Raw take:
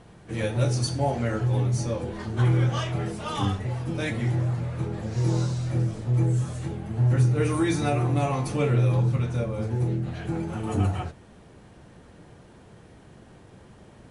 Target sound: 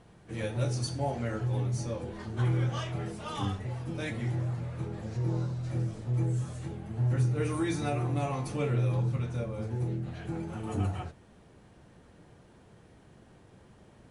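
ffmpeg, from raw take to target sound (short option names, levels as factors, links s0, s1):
-filter_complex "[0:a]asplit=3[s0][s1][s2];[s0]afade=t=out:st=5.16:d=0.02[s3];[s1]equalizer=f=7100:w=0.47:g=-12,afade=t=in:st=5.16:d=0.02,afade=t=out:st=5.63:d=0.02[s4];[s2]afade=t=in:st=5.63:d=0.02[s5];[s3][s4][s5]amix=inputs=3:normalize=0,volume=0.473"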